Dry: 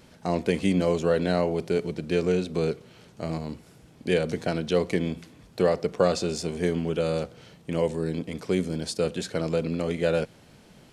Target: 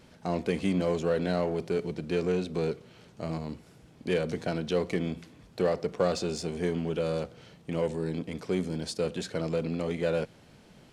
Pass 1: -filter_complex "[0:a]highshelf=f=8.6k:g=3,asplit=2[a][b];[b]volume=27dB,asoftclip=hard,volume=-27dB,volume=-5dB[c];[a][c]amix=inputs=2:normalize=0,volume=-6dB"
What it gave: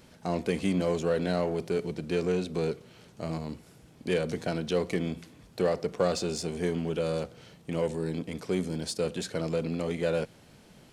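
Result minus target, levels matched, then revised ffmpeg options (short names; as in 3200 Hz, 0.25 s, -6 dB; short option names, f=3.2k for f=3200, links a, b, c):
8000 Hz band +3.5 dB
-filter_complex "[0:a]highshelf=f=8.6k:g=-6,asplit=2[a][b];[b]volume=27dB,asoftclip=hard,volume=-27dB,volume=-5dB[c];[a][c]amix=inputs=2:normalize=0,volume=-6dB"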